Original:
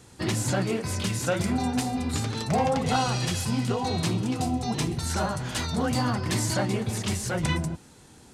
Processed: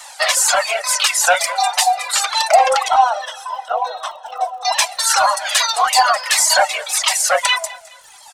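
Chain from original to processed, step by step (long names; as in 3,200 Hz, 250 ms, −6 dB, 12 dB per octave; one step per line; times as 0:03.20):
Butterworth high-pass 580 Hz 72 dB per octave
reverb reduction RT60 1.6 s
0:02.88–0:04.65: moving average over 19 samples
in parallel at −8.5 dB: soft clipping −27 dBFS, distortion −13 dB
on the sum: surface crackle 48 per second −52 dBFS
repeating echo 210 ms, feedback 37%, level −20.5 dB
boost into a limiter +19.5 dB
flanger whose copies keep moving one way falling 1.7 Hz
level +1.5 dB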